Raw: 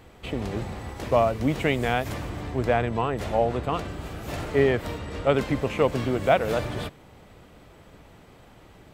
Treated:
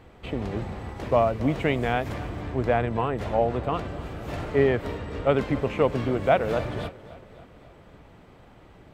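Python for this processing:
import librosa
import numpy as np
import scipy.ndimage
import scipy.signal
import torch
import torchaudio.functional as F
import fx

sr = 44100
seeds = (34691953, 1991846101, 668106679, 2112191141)

y = fx.high_shelf(x, sr, hz=4600.0, db=-11.5)
y = fx.echo_feedback(y, sr, ms=272, feedback_pct=56, wet_db=-19.0)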